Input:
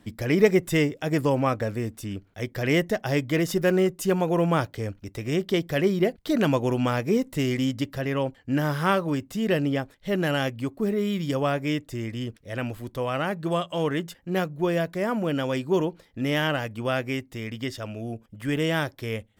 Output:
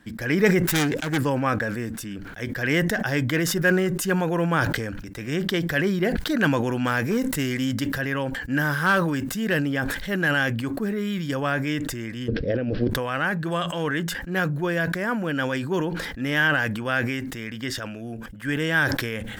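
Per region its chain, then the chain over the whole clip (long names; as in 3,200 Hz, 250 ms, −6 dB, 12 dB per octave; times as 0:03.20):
0:00.62–0:01.18: phase distortion by the signal itself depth 0.5 ms + noise gate −44 dBFS, range −8 dB
0:06.84–0:10.22: high-shelf EQ 7,900 Hz +5.5 dB + hard clipping −15.5 dBFS
0:12.28–0:12.90: bad sample-rate conversion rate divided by 4×, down none, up filtered + low shelf with overshoot 700 Hz +11.5 dB, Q 3 + compressor whose output falls as the input rises −21 dBFS, ratio −0.5
whole clip: thirty-one-band graphic EQ 100 Hz −10 dB, 400 Hz −4 dB, 630 Hz −5 dB, 1,600 Hz +12 dB; level that may fall only so fast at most 35 dB per second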